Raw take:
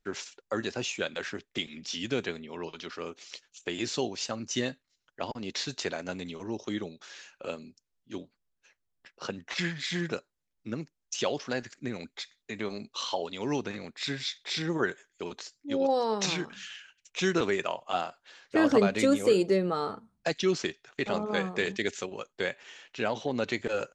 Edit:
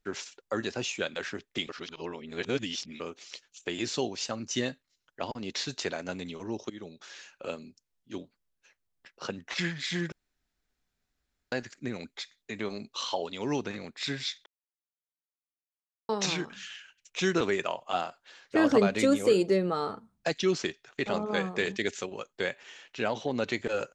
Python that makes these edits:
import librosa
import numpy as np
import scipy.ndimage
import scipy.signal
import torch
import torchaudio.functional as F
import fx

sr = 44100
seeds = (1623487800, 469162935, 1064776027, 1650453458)

y = fx.edit(x, sr, fx.reverse_span(start_s=1.69, length_s=1.31),
    fx.fade_in_from(start_s=6.7, length_s=0.3, floor_db=-20.0),
    fx.room_tone_fill(start_s=10.12, length_s=1.4),
    fx.silence(start_s=14.46, length_s=1.63), tone=tone)